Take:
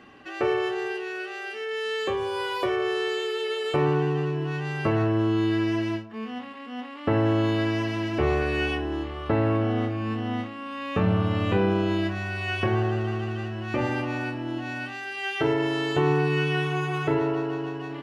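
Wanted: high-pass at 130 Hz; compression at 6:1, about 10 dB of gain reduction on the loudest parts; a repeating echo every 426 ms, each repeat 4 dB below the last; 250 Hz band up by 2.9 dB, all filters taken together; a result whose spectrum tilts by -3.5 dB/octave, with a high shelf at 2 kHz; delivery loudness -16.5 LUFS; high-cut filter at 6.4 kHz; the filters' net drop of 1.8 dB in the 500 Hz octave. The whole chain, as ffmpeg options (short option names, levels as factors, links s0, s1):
-af "highpass=130,lowpass=6400,equalizer=f=250:t=o:g=8,equalizer=f=500:t=o:g=-7,highshelf=f=2000:g=5,acompressor=threshold=0.0355:ratio=6,aecho=1:1:426|852|1278|1704|2130|2556|2982|3408|3834:0.631|0.398|0.25|0.158|0.0994|0.0626|0.0394|0.0249|0.0157,volume=5.01"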